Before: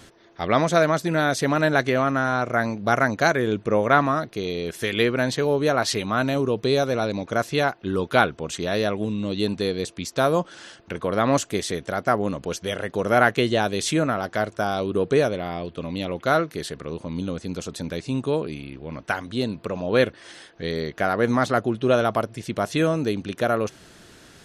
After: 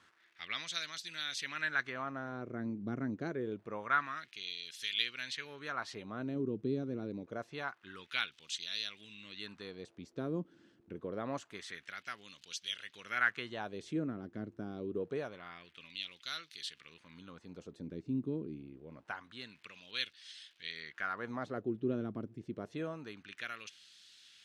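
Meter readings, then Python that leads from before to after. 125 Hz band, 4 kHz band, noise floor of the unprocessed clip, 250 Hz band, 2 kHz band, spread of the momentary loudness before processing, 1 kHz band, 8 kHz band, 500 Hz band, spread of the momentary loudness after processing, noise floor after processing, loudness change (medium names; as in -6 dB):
-18.5 dB, -9.0 dB, -51 dBFS, -15.5 dB, -13.0 dB, 11 LU, -19.0 dB, -16.5 dB, -21.0 dB, 16 LU, -69 dBFS, -16.0 dB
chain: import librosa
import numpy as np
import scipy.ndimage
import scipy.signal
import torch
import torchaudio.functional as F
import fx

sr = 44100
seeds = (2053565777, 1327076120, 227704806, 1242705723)

y = fx.tone_stack(x, sr, knobs='6-0-2')
y = fx.dmg_crackle(y, sr, seeds[0], per_s=200.0, level_db=-60.0)
y = fx.filter_lfo_bandpass(y, sr, shape='sine', hz=0.26, low_hz=300.0, high_hz=3800.0, q=1.8)
y = y * librosa.db_to_amplitude(13.0)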